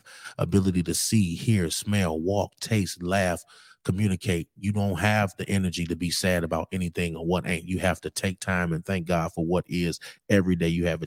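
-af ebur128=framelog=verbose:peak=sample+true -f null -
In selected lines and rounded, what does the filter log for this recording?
Integrated loudness:
  I:         -26.2 LUFS
  Threshold: -36.3 LUFS
Loudness range:
  LRA:         1.8 LU
  Threshold: -46.6 LUFS
  LRA low:   -27.4 LUFS
  LRA high:  -25.6 LUFS
Sample peak:
  Peak:       -7.1 dBFS
True peak:
  Peak:       -7.1 dBFS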